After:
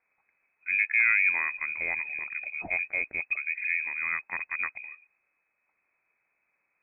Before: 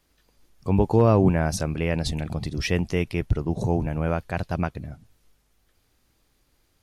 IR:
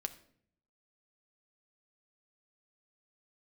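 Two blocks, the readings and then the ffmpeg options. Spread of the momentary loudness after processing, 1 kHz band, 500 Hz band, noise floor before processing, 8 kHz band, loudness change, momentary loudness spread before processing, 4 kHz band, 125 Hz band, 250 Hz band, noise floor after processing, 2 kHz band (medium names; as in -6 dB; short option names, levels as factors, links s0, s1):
12 LU, -11.0 dB, -24.5 dB, -68 dBFS, under -40 dB, -2.5 dB, 12 LU, under -40 dB, under -35 dB, -31.0 dB, -78 dBFS, +11.0 dB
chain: -af "highpass=f=100:p=1,lowpass=f=2200:t=q:w=0.5098,lowpass=f=2200:t=q:w=0.6013,lowpass=f=2200:t=q:w=0.9,lowpass=f=2200:t=q:w=2.563,afreqshift=-2600,volume=0.562"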